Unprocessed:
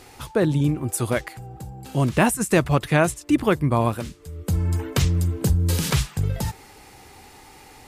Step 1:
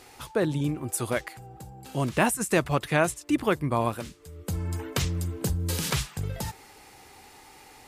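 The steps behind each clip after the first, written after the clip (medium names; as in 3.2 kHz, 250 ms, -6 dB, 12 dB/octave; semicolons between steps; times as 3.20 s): bass shelf 250 Hz -6.5 dB; trim -3 dB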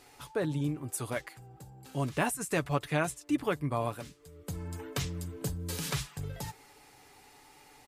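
comb 7 ms, depth 41%; trim -7 dB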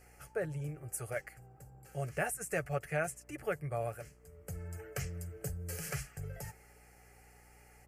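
static phaser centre 1 kHz, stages 6; mains buzz 60 Hz, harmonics 23, -61 dBFS -7 dB/octave; trim -2 dB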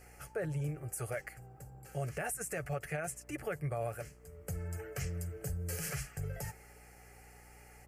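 peak limiter -31.5 dBFS, peak gain reduction 11 dB; trim +3.5 dB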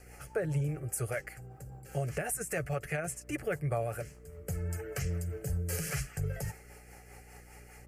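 rotary cabinet horn 5 Hz; trim +6 dB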